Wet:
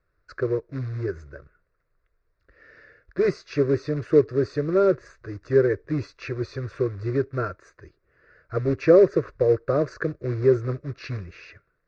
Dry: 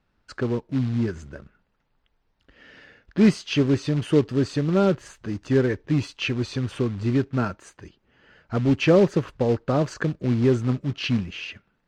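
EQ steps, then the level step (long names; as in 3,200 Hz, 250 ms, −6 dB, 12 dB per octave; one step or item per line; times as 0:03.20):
low-pass filter 5,100 Hz 24 dB per octave
phaser with its sweep stopped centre 840 Hz, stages 6
dynamic equaliser 390 Hz, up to +5 dB, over −34 dBFS, Q 1
0.0 dB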